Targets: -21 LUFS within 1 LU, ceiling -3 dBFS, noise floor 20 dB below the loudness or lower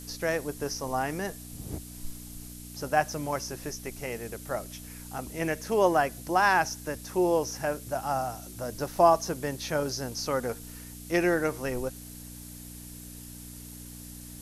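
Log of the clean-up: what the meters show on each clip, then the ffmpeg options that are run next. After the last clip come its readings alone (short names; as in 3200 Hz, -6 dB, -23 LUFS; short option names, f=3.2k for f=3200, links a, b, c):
hum 60 Hz; harmonics up to 300 Hz; hum level -43 dBFS; noise floor -44 dBFS; noise floor target -49 dBFS; loudness -29.0 LUFS; peak -8.5 dBFS; loudness target -21.0 LUFS
-> -af "bandreject=f=60:t=h:w=4,bandreject=f=120:t=h:w=4,bandreject=f=180:t=h:w=4,bandreject=f=240:t=h:w=4,bandreject=f=300:t=h:w=4"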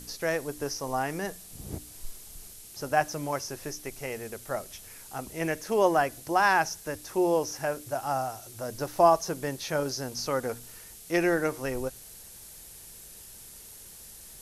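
hum none; noise floor -48 dBFS; noise floor target -49 dBFS
-> -af "afftdn=nr=6:nf=-48"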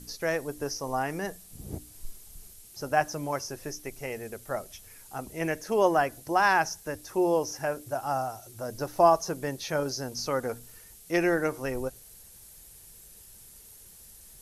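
noise floor -51 dBFS; loudness -29.0 LUFS; peak -8.5 dBFS; loudness target -21.0 LUFS
-> -af "volume=8dB,alimiter=limit=-3dB:level=0:latency=1"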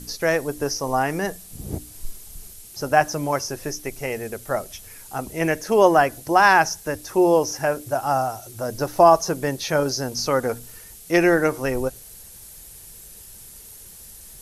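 loudness -21.5 LUFS; peak -3.0 dBFS; noise floor -43 dBFS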